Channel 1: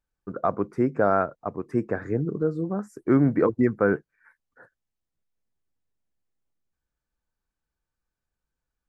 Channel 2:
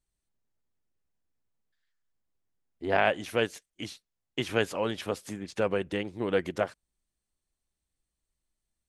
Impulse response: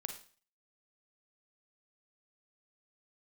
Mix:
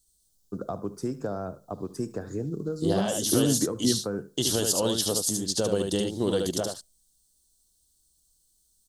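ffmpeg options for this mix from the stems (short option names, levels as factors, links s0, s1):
-filter_complex "[0:a]acrossover=split=150|980[s0][s1][s2];[s0]acompressor=threshold=0.00708:ratio=4[s3];[s1]acompressor=threshold=0.0251:ratio=4[s4];[s2]acompressor=threshold=0.01:ratio=4[s5];[s3][s4][s5]amix=inputs=3:normalize=0,adelay=250,volume=0.75,asplit=3[s6][s7][s8];[s7]volume=0.2[s9];[s8]volume=0.0944[s10];[1:a]bandreject=f=2500:w=5.5,alimiter=limit=0.112:level=0:latency=1:release=79,volume=0.668,asplit=4[s11][s12][s13][s14];[s12]volume=0.0794[s15];[s13]volume=0.631[s16];[s14]apad=whole_len=403004[s17];[s6][s17]sidechaingate=range=0.501:threshold=0.00158:ratio=16:detection=peak[s18];[2:a]atrim=start_sample=2205[s19];[s9][s15]amix=inputs=2:normalize=0[s20];[s20][s19]afir=irnorm=-1:irlink=0[s21];[s10][s16]amix=inputs=2:normalize=0,aecho=0:1:74:1[s22];[s18][s11][s21][s22]amix=inputs=4:normalize=0,tiltshelf=f=1300:g=9,aexciter=amount=13:drive=9.7:freq=3500"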